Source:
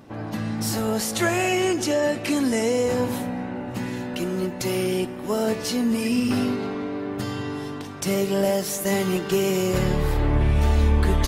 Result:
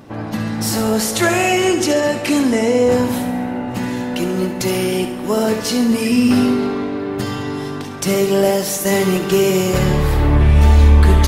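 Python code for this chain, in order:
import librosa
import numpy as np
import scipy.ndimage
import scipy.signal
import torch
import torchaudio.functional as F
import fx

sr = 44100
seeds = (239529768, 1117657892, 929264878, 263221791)

y = fx.high_shelf(x, sr, hz=4500.0, db=-8.0, at=(2.42, 2.92))
y = fx.echo_feedback(y, sr, ms=69, feedback_pct=56, wet_db=-10.0)
y = y * librosa.db_to_amplitude(6.5)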